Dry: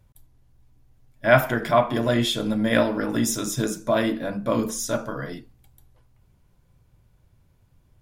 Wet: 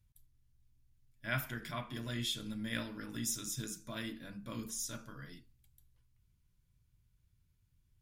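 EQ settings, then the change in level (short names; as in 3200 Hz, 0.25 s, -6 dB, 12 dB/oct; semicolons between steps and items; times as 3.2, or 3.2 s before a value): passive tone stack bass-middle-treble 6-0-2; low shelf 490 Hz -5 dB; +5.0 dB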